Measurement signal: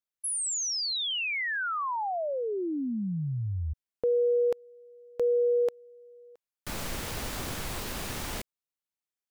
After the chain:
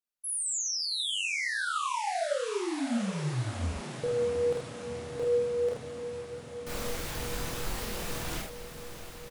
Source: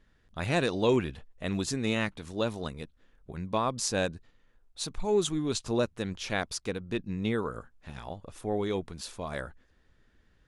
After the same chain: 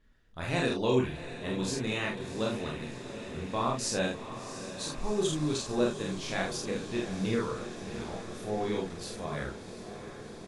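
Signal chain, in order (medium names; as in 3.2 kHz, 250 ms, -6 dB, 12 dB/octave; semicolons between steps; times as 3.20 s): doubling 47 ms -3 dB; chorus voices 6, 0.25 Hz, delay 29 ms, depth 4.5 ms; echo that smears into a reverb 713 ms, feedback 76%, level -11.5 dB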